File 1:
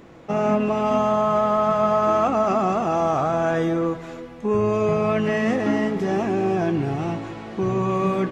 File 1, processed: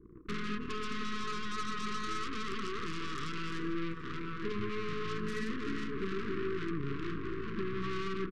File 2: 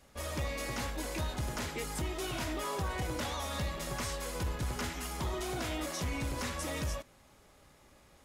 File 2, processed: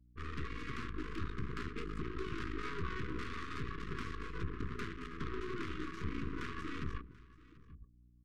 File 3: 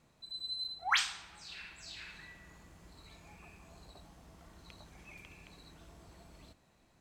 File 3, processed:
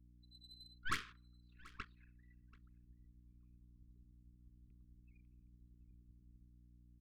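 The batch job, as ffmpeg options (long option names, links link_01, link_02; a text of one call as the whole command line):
ffmpeg -i in.wav -filter_complex "[0:a]flanger=delay=1.9:depth=5.3:regen=-65:speed=0.69:shape=sinusoidal,lowpass=10000,bandreject=frequency=60:width_type=h:width=6,bandreject=frequency=120:width_type=h:width=6,bandreject=frequency=180:width_type=h:width=6,bandreject=frequency=240:width_type=h:width=6,bandreject=frequency=300:width_type=h:width=6,bandreject=frequency=360:width_type=h:width=6,bandreject=frequency=420:width_type=h:width=6,asplit=2[link_01][link_02];[link_02]adelay=874,lowpass=frequency=1900:poles=1,volume=-13dB,asplit=2[link_03][link_04];[link_04]adelay=874,lowpass=frequency=1900:poles=1,volume=0.24,asplit=2[link_05][link_06];[link_06]adelay=874,lowpass=frequency=1900:poles=1,volume=0.24[link_07];[link_03][link_05][link_07]amix=inputs=3:normalize=0[link_08];[link_01][link_08]amix=inputs=2:normalize=0,anlmdn=0.0251,lowshelf=frequency=330:gain=-4,acompressor=threshold=-39dB:ratio=4,aeval=exprs='val(0)+0.000447*(sin(2*PI*60*n/s)+sin(2*PI*2*60*n/s)/2+sin(2*PI*3*60*n/s)/3+sin(2*PI*4*60*n/s)/4+sin(2*PI*5*60*n/s)/5)':channel_layout=same,adynamicsmooth=sensitivity=4.5:basefreq=1100,aeval=exprs='0.0355*(cos(1*acos(clip(val(0)/0.0355,-1,1)))-cos(1*PI/2))+0.000447*(cos(2*acos(clip(val(0)/0.0355,-1,1)))-cos(2*PI/2))+0.000398*(cos(5*acos(clip(val(0)/0.0355,-1,1)))-cos(5*PI/2))+0.00794*(cos(8*acos(clip(val(0)/0.0355,-1,1)))-cos(8*PI/2))':channel_layout=same,asuperstop=centerf=690:order=12:qfactor=1.1,asplit=2[link_09][link_10];[link_10]aecho=0:1:735:0.0841[link_11];[link_09][link_11]amix=inputs=2:normalize=0,volume=3.5dB" out.wav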